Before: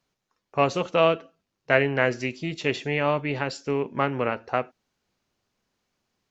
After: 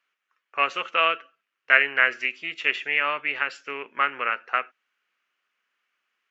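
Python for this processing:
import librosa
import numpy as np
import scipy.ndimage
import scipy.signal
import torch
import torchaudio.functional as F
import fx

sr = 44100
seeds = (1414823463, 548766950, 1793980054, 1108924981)

y = scipy.signal.sosfilt(scipy.signal.butter(2, 410.0, 'highpass', fs=sr, output='sos'), x)
y = fx.band_shelf(y, sr, hz=1900.0, db=15.5, octaves=1.7)
y = y * librosa.db_to_amplitude(-8.5)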